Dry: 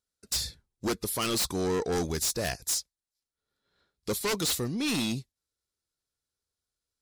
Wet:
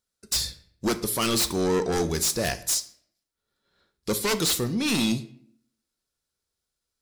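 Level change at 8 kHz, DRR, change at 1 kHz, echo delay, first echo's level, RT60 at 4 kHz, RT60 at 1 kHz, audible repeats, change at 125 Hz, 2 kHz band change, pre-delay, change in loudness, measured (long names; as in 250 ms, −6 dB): +4.5 dB, 9.5 dB, +4.5 dB, no echo audible, no echo audible, 0.45 s, 0.55 s, no echo audible, +4.0 dB, +4.5 dB, 3 ms, +4.5 dB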